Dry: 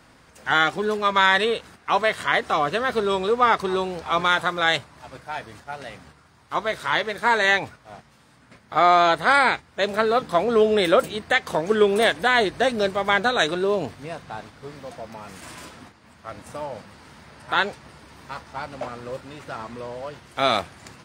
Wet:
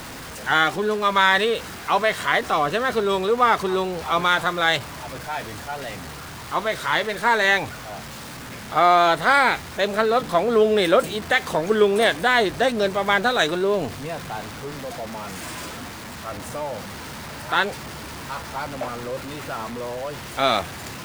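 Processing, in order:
converter with a step at zero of −31.5 dBFS

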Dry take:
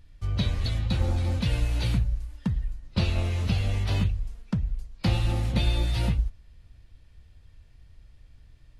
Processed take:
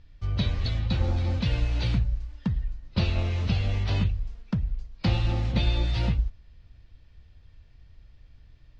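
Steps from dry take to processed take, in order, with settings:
low-pass filter 5,800 Hz 24 dB per octave

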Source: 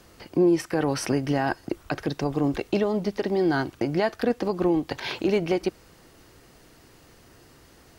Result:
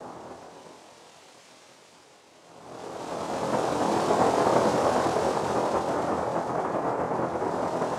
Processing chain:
extreme stretch with random phases 34×, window 0.10 s, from 0:03.70
cochlear-implant simulation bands 2
bass and treble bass −7 dB, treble −4 dB
flutter between parallel walls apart 4.1 metres, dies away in 0.25 s

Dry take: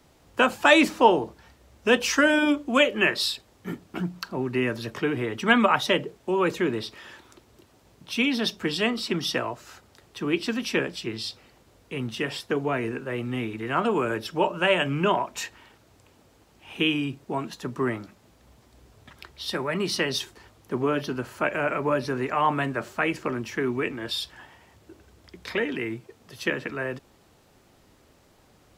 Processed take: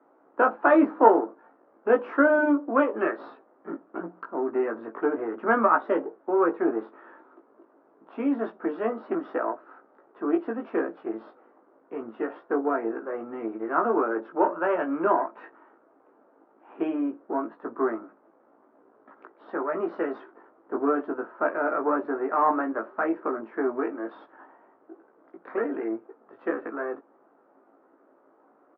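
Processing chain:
gain on one half-wave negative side −7 dB
elliptic band-pass filter 280–1,400 Hz, stop band 70 dB
double-tracking delay 18 ms −3.5 dB
level +3 dB

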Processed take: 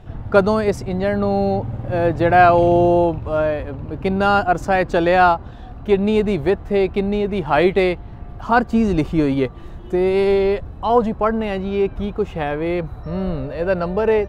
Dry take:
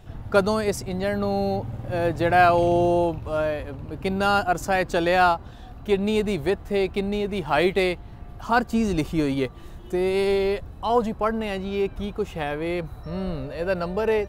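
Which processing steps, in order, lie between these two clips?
low-pass filter 2,000 Hz 6 dB per octave
level +6 dB

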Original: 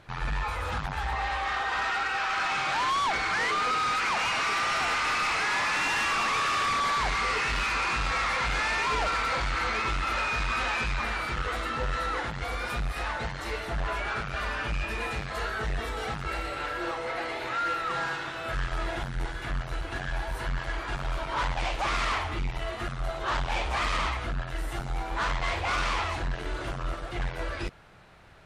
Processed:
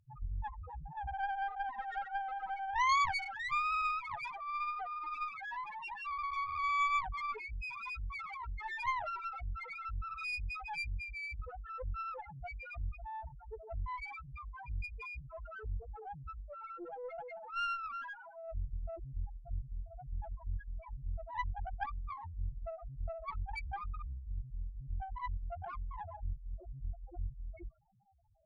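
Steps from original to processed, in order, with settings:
Chebyshev low-pass with heavy ripple 3,200 Hz, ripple 6 dB
spectral peaks only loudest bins 1
harmonic generator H 3 −17 dB, 4 −9 dB, 6 −17 dB, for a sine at −29.5 dBFS
level +6 dB

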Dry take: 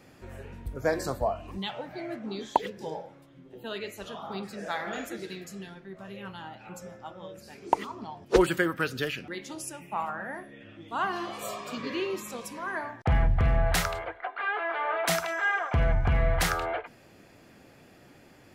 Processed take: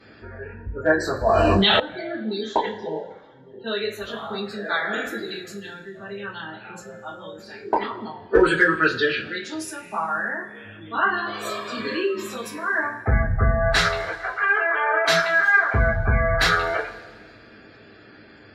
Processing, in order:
gate on every frequency bin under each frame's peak −30 dB strong
graphic EQ with 15 bands 100 Hz +5 dB, 400 Hz +8 dB, 1,600 Hz +11 dB, 4,000 Hz +10 dB
gate on every frequency bin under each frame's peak −25 dB strong
in parallel at −9.5 dB: asymmetric clip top −12 dBFS
on the sum: coupled-rooms reverb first 0.24 s, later 1.7 s, from −21 dB, DRR −7 dB
0:01.26–0:01.80: envelope flattener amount 100%
level −8 dB

